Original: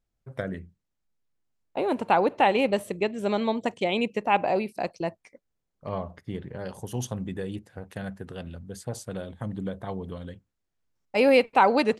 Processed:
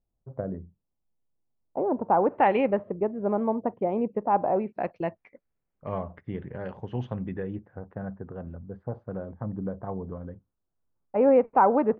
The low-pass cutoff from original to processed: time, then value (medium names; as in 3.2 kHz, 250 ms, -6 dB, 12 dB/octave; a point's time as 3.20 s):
low-pass 24 dB/octave
2.07 s 1 kHz
2.55 s 2.4 kHz
2.91 s 1.2 kHz
4.43 s 1.2 kHz
4.97 s 2.5 kHz
7.22 s 2.5 kHz
7.87 s 1.3 kHz